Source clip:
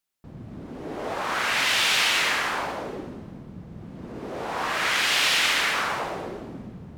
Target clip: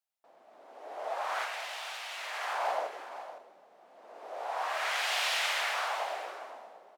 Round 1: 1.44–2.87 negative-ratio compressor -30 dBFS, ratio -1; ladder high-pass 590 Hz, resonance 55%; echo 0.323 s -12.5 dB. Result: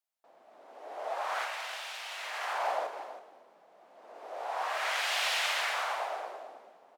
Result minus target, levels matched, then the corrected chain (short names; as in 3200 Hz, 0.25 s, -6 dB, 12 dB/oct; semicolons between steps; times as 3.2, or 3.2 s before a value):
echo 0.189 s early
1.44–2.87 negative-ratio compressor -30 dBFS, ratio -1; ladder high-pass 590 Hz, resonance 55%; echo 0.512 s -12.5 dB